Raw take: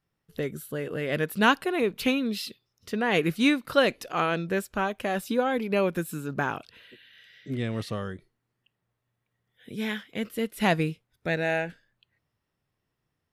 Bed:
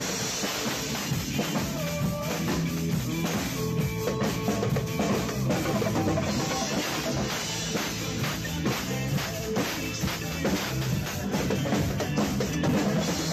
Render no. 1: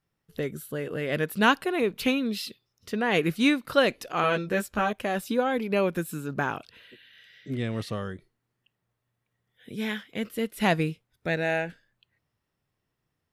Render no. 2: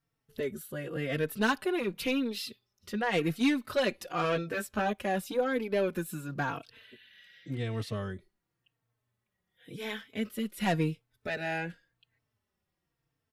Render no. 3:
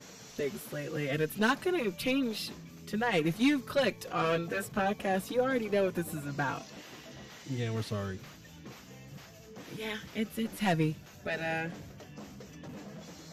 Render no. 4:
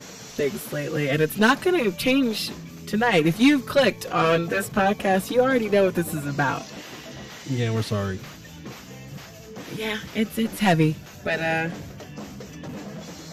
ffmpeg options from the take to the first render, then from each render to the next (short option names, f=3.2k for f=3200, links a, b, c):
-filter_complex "[0:a]asettb=1/sr,asplit=3[a][b][c];[a]atrim=end=4.224[d];[b]atrim=start=4.22:end=4.93,asetpts=PTS-STARTPTS,afade=t=in:d=0.004:c=qsin,afade=t=out:st=0.706:d=0.004:c=qsin,asplit=2[e][f];[f]adelay=14,volume=-2.5dB[g];[e][g]amix=inputs=2:normalize=0,atrim=end_sample=31311[h];[c]atrim=start=4.926[i];[d][h]acrossfade=d=0.004:c1=hsin:c2=qsin[j];[j][i]acrossfade=d=0.004:c1=qsin:c2=hsin"
-filter_complex "[0:a]asoftclip=type=tanh:threshold=-18.5dB,asplit=2[a][b];[b]adelay=3.9,afreqshift=-0.92[c];[a][c]amix=inputs=2:normalize=1"
-filter_complex "[1:a]volume=-20.5dB[a];[0:a][a]amix=inputs=2:normalize=0"
-af "volume=9.5dB"